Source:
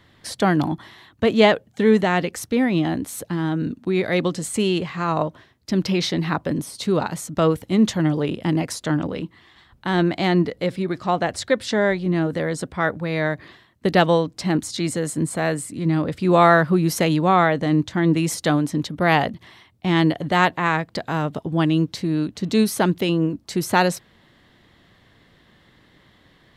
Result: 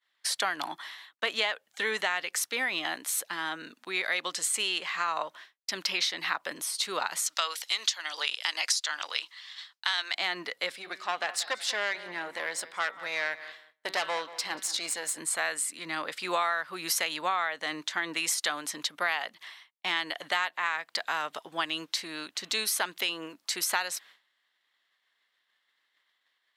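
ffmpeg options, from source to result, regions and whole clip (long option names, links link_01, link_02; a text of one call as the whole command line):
ffmpeg -i in.wav -filter_complex "[0:a]asettb=1/sr,asplit=3[link_01][link_02][link_03];[link_01]atrim=end=7.264[link_04];[link_02]atrim=start=7.26:end=10.15,asetpts=PTS-STARTPTS,afade=type=in:duration=0.004:curve=qsin,afade=type=out:start_time=2.886:duration=0.004:curve=qsin,highpass=700,equalizer=frequency=5000:width_type=o:width=1.6:gain=13.5[link_05];[link_03]atrim=start=10.146[link_06];[link_04][link_05]acrossfade=duration=0.004:curve1=hsin:curve2=qsin[link_07];[link_07][link_06]acrossfade=duration=0.004:curve1=qsin:curve2=hsin,asettb=1/sr,asplit=3[link_08][link_09][link_10];[link_08]atrim=end=10.724[link_11];[link_09]atrim=start=10.72:end=15.18,asetpts=PTS-STARTPTS,afade=type=in:duration=0.004:curve=qsin,afade=type=out:start_time=4.456:duration=0.004:curve=qsin,bandreject=frequency=190.7:width_type=h:width=4,bandreject=frequency=381.4:width_type=h:width=4,bandreject=frequency=572.1:width_type=h:width=4,bandreject=frequency=762.8:width_type=h:width=4,bandreject=frequency=953.5:width_type=h:width=4,bandreject=frequency=1144.2:width_type=h:width=4,bandreject=frequency=1334.9:width_type=h:width=4,bandreject=frequency=1525.6:width_type=h:width=4,bandreject=frequency=1716.3:width_type=h:width=4,bandreject=frequency=1907:width_type=h:width=4,bandreject=frequency=2097.7:width_type=h:width=4,bandreject=frequency=2288.4:width_type=h:width=4,bandreject=frequency=2479.1:width_type=h:width=4,bandreject=frequency=2669.8:width_type=h:width=4,bandreject=frequency=2860.5:width_type=h:width=4,bandreject=frequency=3051.2:width_type=h:width=4,bandreject=frequency=3241.9:width_type=h:width=4,bandreject=frequency=3432.6:width_type=h:width=4,bandreject=frequency=3623.3:width_type=h:width=4,bandreject=frequency=3814:width_type=h:width=4,bandreject=frequency=4004.7:width_type=h:width=4,bandreject=frequency=4195.4:width_type=h:width=4,bandreject=frequency=4386.1:width_type=h:width=4,bandreject=frequency=4576.8:width_type=h:width=4,bandreject=frequency=4767.5:width_type=h:width=4,bandreject=frequency=4958.2:width_type=h:width=4,bandreject=frequency=5148.9:width_type=h:width=4,bandreject=frequency=5339.6:width_type=h:width=4,aeval=exprs='(tanh(6.31*val(0)+0.65)-tanh(0.65))/6.31':channel_layout=same,asplit=2[link_12][link_13];[link_13]adelay=185,lowpass=frequency=2600:poles=1,volume=-16dB,asplit=2[link_14][link_15];[link_15]adelay=185,lowpass=frequency=2600:poles=1,volume=0.38,asplit=2[link_16][link_17];[link_17]adelay=185,lowpass=frequency=2600:poles=1,volume=0.38[link_18];[link_12][link_14][link_16][link_18]amix=inputs=4:normalize=0,atrim=end_sample=196686[link_19];[link_10]atrim=start=15.176[link_20];[link_11][link_19]acrossfade=duration=0.004:curve1=hsin:curve2=qsin[link_21];[link_21][link_20]acrossfade=duration=0.004:curve1=qsin:curve2=hsin,agate=range=-33dB:threshold=-42dB:ratio=3:detection=peak,highpass=1300,acompressor=threshold=-29dB:ratio=8,volume=4dB" out.wav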